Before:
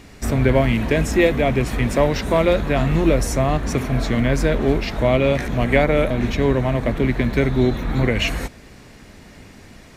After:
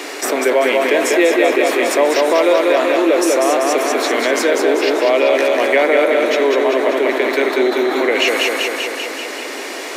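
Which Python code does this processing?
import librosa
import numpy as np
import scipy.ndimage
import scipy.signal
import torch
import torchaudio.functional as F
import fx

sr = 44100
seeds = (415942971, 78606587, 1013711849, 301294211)

y = scipy.signal.sosfilt(scipy.signal.butter(8, 310.0, 'highpass', fs=sr, output='sos'), x)
y = fx.echo_feedback(y, sr, ms=194, feedback_pct=55, wet_db=-3.5)
y = fx.env_flatten(y, sr, amount_pct=50)
y = y * 10.0 ** (2.0 / 20.0)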